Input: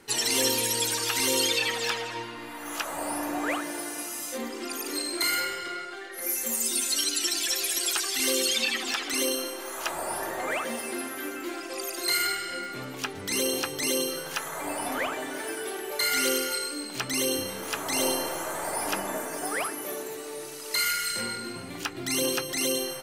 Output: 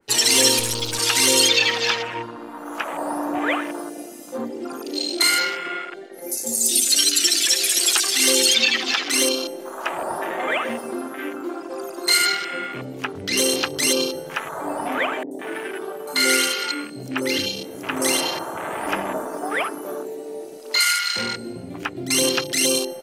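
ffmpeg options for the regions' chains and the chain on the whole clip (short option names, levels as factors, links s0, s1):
-filter_complex "[0:a]asettb=1/sr,asplit=3[s0][s1][s2];[s0]atrim=end=0.594[s3];[s1]atrim=start=0.59:end=0.99,asetpts=PTS-STARTPTS,afade=t=in:d=0.004:c=qsin,afade=t=out:st=0.396:d=0.004:c=qsin,equalizer=f=66:w=0.43:g=10,aeval=exprs='(tanh(17.8*val(0)+0.7)-tanh(0.7))/17.8':c=same[s4];[s2]atrim=start=0.986[s5];[s3][s4]acrossfade=d=0.004:c1=hsin:c2=qsin[s6];[s6][s5]acrossfade=d=0.004:c1=qsin:c2=hsin,asettb=1/sr,asplit=3[s7][s8][s9];[s7]atrim=end=15.234[s10];[s8]atrim=start=15.23:end=18.87,asetpts=PTS-STARTPTS,afade=t=in:d=0.004:c=qsin,afade=t=out:st=3.636:d=0.004:c=qsin,highpass=80,asoftclip=type=hard:threshold=0.168,acrossover=split=620|5800[s11][s12][s13];[s13]adelay=80[s14];[s12]adelay=160[s15];[s11][s15][s14]amix=inputs=3:normalize=0,atrim=end_sample=160524[s16];[s9]atrim=start=18.866[s17];[s10][s16]acrossfade=d=0.004:c1=hsin:c2=qsin[s18];[s18][s17]acrossfade=d=0.004:c1=qsin:c2=hsin,afwtdn=0.0178,adynamicequalizer=threshold=0.01:dfrequency=2200:dqfactor=0.7:tfrequency=2200:tqfactor=0.7:attack=5:release=100:ratio=0.375:range=2:mode=boostabove:tftype=highshelf,volume=2.11"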